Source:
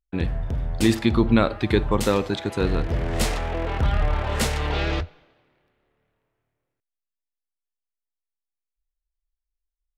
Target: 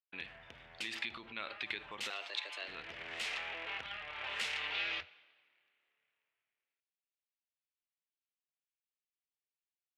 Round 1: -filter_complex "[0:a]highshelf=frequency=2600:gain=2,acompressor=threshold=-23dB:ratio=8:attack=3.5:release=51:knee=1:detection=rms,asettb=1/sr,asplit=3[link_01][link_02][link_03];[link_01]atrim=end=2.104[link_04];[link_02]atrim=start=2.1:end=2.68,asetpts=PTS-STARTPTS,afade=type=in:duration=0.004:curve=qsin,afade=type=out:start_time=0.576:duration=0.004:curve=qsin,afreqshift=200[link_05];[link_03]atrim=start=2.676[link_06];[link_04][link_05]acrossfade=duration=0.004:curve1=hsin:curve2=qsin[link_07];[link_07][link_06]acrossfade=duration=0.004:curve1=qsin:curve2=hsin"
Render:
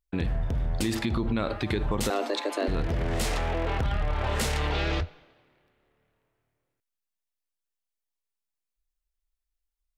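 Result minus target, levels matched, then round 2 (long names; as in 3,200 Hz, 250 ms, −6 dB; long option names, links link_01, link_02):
2,000 Hz band −7.5 dB
-filter_complex "[0:a]highshelf=frequency=2600:gain=2,acompressor=threshold=-23dB:ratio=8:attack=3.5:release=51:knee=1:detection=rms,bandpass=frequency=2600:width_type=q:width=2.1:csg=0,asettb=1/sr,asplit=3[link_01][link_02][link_03];[link_01]atrim=end=2.104[link_04];[link_02]atrim=start=2.1:end=2.68,asetpts=PTS-STARTPTS,afade=type=in:duration=0.004:curve=qsin,afade=type=out:start_time=0.576:duration=0.004:curve=qsin,afreqshift=200[link_05];[link_03]atrim=start=2.676[link_06];[link_04][link_05]acrossfade=duration=0.004:curve1=hsin:curve2=qsin[link_07];[link_07][link_06]acrossfade=duration=0.004:curve1=qsin:curve2=hsin"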